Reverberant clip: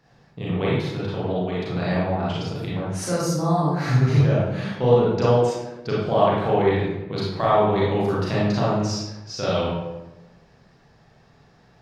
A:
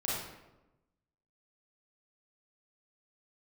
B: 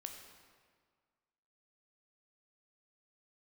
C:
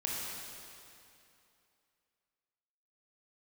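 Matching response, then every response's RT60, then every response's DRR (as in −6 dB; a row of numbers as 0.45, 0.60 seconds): A; 1.0, 1.8, 2.7 seconds; −7.0, 3.5, −4.5 decibels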